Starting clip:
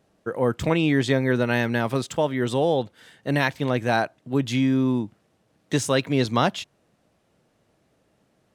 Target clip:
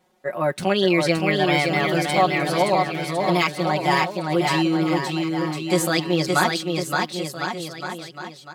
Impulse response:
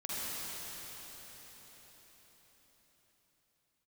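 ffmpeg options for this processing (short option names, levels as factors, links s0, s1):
-filter_complex "[0:a]lowshelf=f=290:g=-7,aecho=1:1:6.7:0.99,asetrate=53981,aresample=44100,atempo=0.816958,asplit=2[s0][s1];[s1]aecho=0:1:570|1054|1466|1816|2114:0.631|0.398|0.251|0.158|0.1[s2];[s0][s2]amix=inputs=2:normalize=0"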